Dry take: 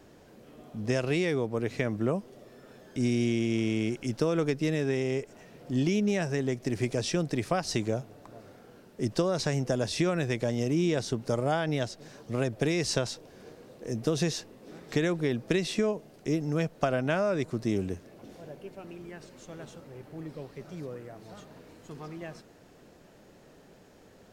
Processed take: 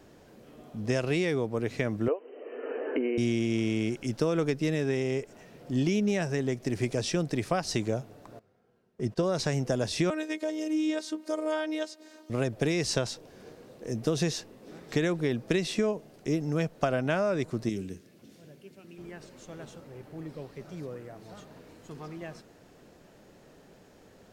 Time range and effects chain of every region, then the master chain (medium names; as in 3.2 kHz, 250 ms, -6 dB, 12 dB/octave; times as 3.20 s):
2.08–3.18 s: brick-wall FIR band-pass 250–3100 Hz + peaking EQ 460 Hz +12.5 dB 0.24 oct + three bands compressed up and down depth 100%
8.39–9.23 s: treble shelf 3.5 kHz -8 dB + comb of notches 290 Hz + gate -44 dBFS, range -15 dB
10.10–12.30 s: band-stop 5.7 kHz, Q 18 + robot voice 310 Hz + brick-wall FIR high-pass 220 Hz
17.69–18.98 s: high-pass 130 Hz + peaking EQ 790 Hz -14 dB 1.9 oct + hum notches 60/120/180/240/300/360/420/480 Hz
whole clip: none